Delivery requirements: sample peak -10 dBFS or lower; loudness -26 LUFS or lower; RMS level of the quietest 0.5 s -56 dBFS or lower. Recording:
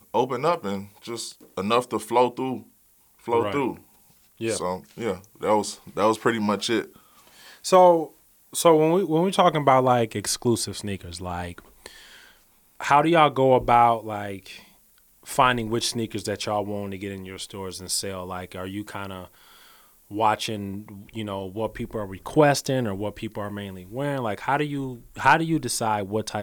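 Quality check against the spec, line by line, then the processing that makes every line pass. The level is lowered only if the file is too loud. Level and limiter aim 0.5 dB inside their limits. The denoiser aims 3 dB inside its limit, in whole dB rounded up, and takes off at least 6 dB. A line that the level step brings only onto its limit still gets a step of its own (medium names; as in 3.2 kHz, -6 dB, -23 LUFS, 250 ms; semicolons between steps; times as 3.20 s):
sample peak -4.5 dBFS: fail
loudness -24.0 LUFS: fail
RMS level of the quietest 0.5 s -59 dBFS: pass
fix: trim -2.5 dB; peak limiter -10.5 dBFS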